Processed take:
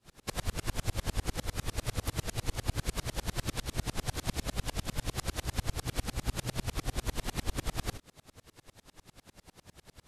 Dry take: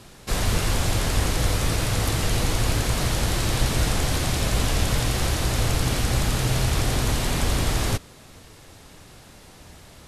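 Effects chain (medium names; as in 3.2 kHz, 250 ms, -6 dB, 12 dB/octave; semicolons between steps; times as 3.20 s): compression, threshold -22 dBFS, peak gain reduction 7 dB; sawtooth tremolo in dB swelling 10 Hz, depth 35 dB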